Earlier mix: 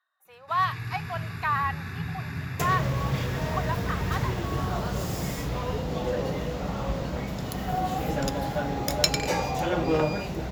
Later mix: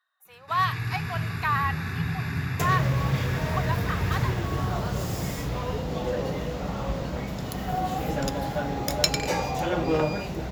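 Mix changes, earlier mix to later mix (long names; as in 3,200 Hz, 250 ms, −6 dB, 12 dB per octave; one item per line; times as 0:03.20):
speech: add spectral tilt +2 dB per octave
first sound +4.5 dB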